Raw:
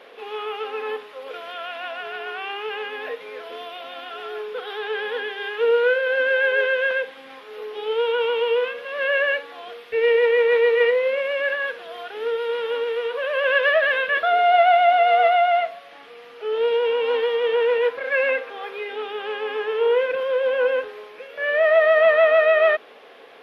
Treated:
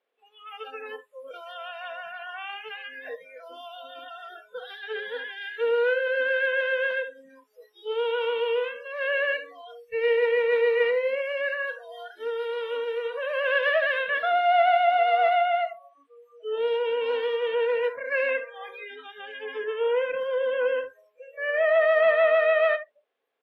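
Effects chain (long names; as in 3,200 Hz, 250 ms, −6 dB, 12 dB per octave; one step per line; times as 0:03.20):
single-tap delay 74 ms −12 dB
noise reduction from a noise print of the clip's start 30 dB
level −5 dB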